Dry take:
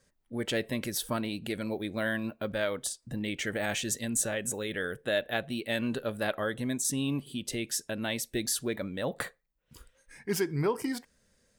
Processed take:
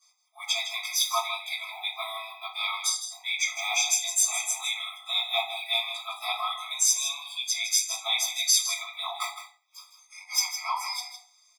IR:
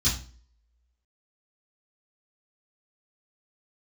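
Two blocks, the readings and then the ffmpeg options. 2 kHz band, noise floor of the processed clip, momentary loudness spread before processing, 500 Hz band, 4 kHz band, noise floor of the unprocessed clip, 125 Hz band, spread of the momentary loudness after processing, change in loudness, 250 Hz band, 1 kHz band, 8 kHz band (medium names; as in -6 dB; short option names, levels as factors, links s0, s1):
+3.0 dB, -63 dBFS, 6 LU, -10.0 dB, +11.5 dB, -72 dBFS, under -40 dB, 12 LU, +5.5 dB, under -40 dB, +8.0 dB, +9.5 dB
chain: -filter_complex "[0:a]aecho=1:1:159:0.316[s0];[1:a]atrim=start_sample=2205,afade=t=out:st=0.32:d=0.01,atrim=end_sample=14553[s1];[s0][s1]afir=irnorm=-1:irlink=0,afftfilt=real='re*eq(mod(floor(b*sr/1024/650),2),1)':imag='im*eq(mod(floor(b*sr/1024/650),2),1)':win_size=1024:overlap=0.75"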